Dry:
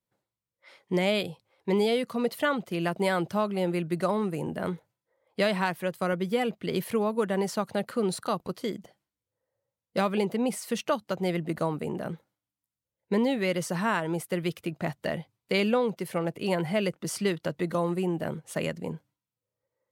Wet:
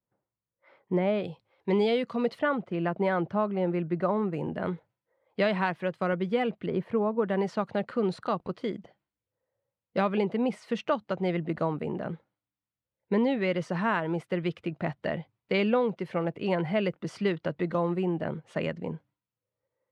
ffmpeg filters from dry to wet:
-af "asetnsamples=n=441:p=0,asendcmd='1.23 lowpass f 3600;2.39 lowpass f 1800;4.33 lowpass f 3000;6.66 lowpass f 1400;7.28 lowpass f 2900',lowpass=1400"

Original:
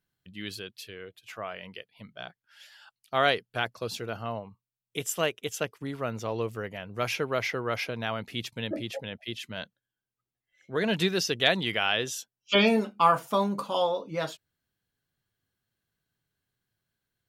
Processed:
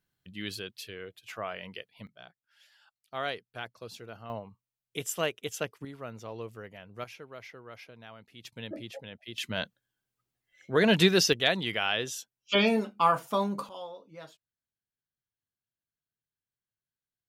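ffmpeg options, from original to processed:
-af "asetnsamples=n=441:p=0,asendcmd='2.07 volume volume -10dB;4.3 volume volume -2.5dB;5.85 volume volume -9dB;7.04 volume volume -17dB;8.45 volume volume -7dB;9.38 volume volume 4.5dB;11.33 volume volume -2.5dB;13.69 volume volume -15.5dB',volume=1.06"

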